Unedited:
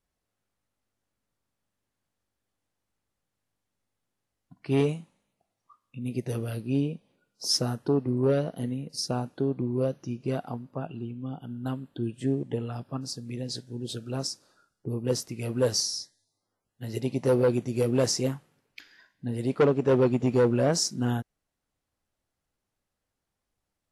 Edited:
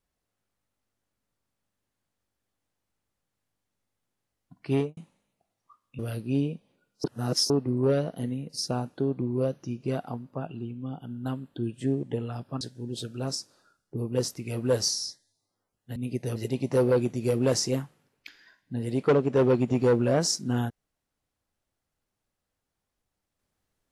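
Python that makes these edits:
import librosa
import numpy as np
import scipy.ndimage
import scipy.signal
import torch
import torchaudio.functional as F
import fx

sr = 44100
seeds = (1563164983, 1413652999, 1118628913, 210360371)

y = fx.studio_fade_out(x, sr, start_s=4.71, length_s=0.26)
y = fx.edit(y, sr, fx.move(start_s=5.99, length_s=0.4, to_s=16.88),
    fx.reverse_span(start_s=7.44, length_s=0.46),
    fx.cut(start_s=13.01, length_s=0.52), tone=tone)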